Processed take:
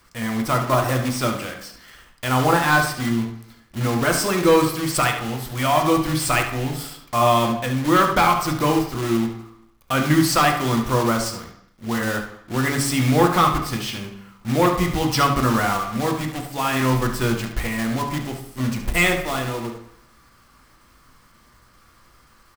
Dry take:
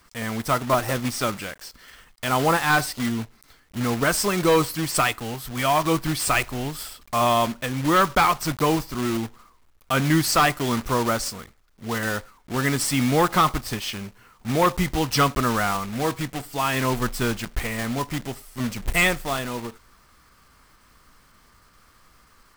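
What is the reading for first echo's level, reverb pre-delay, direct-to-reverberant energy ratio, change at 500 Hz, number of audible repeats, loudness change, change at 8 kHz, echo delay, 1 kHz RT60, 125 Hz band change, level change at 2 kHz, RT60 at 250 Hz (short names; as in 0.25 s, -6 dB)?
-10.0 dB, 3 ms, 3.0 dB, +2.5 dB, 1, +2.5 dB, +0.5 dB, 71 ms, 0.65 s, +4.0 dB, +2.0 dB, 0.80 s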